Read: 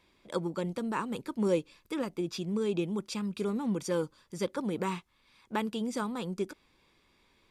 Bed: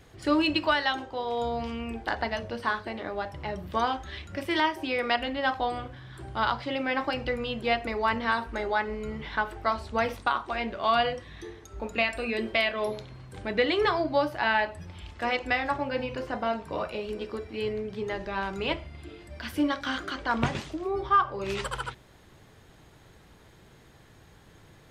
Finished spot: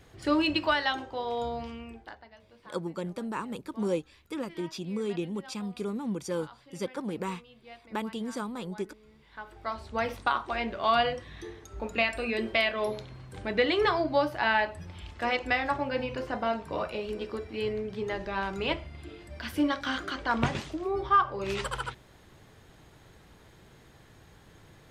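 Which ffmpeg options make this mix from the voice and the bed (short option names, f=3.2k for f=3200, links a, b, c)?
-filter_complex "[0:a]adelay=2400,volume=-1.5dB[a];[1:a]volume=21dB,afade=t=out:st=1.29:d=0.93:silence=0.0841395,afade=t=in:st=9.27:d=1.04:silence=0.0749894[b];[a][b]amix=inputs=2:normalize=0"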